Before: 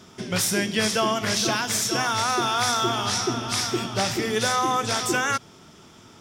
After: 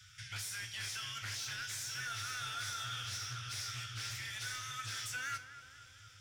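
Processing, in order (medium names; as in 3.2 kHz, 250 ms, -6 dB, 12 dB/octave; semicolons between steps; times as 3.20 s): Chebyshev band-stop 130–1400 Hz, order 5; in parallel at -2.5 dB: compression, threshold -40 dBFS, peak gain reduction 17 dB; on the sum: peak limiter -17.5 dBFS, peak gain reduction 6.5 dB; saturation -27 dBFS, distortion -12 dB; feedback comb 99 Hz, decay 0.35 s, harmonics all, mix 70%; on a send: tape echo 238 ms, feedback 77%, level -9 dB, low-pass 1.5 kHz; on the sum: loudspeaker Doppler distortion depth 0.13 ms; trim -3 dB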